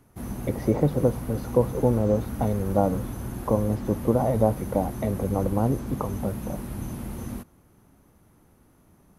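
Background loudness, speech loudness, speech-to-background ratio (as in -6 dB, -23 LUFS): -34.5 LUFS, -26.0 LUFS, 8.5 dB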